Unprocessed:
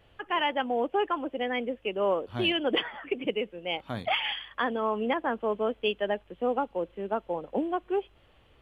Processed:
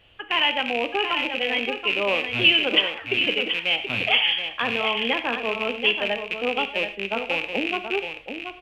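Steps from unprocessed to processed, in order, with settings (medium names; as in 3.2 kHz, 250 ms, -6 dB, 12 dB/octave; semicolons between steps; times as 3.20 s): rattle on loud lows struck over -46 dBFS, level -23 dBFS; peaking EQ 2.8 kHz +12.5 dB 0.76 oct; delay 729 ms -8 dB; gated-style reverb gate 130 ms flat, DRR 9 dB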